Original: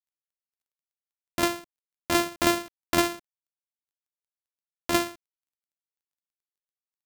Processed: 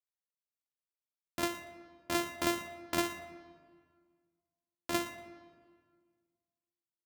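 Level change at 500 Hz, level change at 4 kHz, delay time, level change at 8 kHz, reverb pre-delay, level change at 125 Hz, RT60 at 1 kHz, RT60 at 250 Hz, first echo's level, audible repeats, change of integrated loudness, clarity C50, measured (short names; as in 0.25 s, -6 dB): -9.0 dB, -9.0 dB, 0.118 s, -9.0 dB, 32 ms, -9.0 dB, 1.6 s, 2.0 s, -17.0 dB, 1, -9.5 dB, 10.5 dB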